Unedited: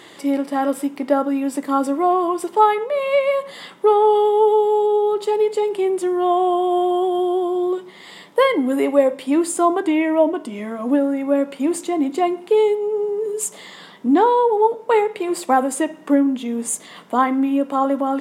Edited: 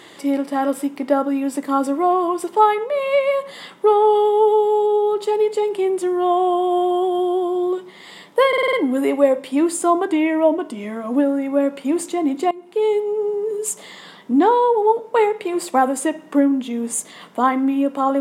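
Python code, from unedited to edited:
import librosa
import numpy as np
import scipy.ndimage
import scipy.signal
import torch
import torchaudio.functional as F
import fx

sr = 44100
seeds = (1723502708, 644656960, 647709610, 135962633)

y = fx.edit(x, sr, fx.stutter(start_s=8.48, slice_s=0.05, count=6),
    fx.fade_in_from(start_s=12.26, length_s=0.49, floor_db=-19.5), tone=tone)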